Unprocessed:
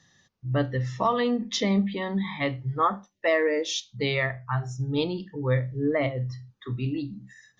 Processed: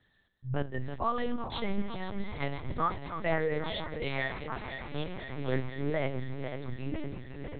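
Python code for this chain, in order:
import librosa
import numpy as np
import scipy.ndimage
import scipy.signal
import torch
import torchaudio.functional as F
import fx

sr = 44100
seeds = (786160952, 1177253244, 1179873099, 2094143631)

y = fx.reverse_delay_fb(x, sr, ms=250, feedback_pct=84, wet_db=-10)
y = fx.highpass(y, sr, hz=290.0, slope=24, at=(4.01, 5.23))
y = fx.lpc_vocoder(y, sr, seeds[0], excitation='pitch_kept', order=8)
y = F.gain(torch.from_numpy(y), -6.5).numpy()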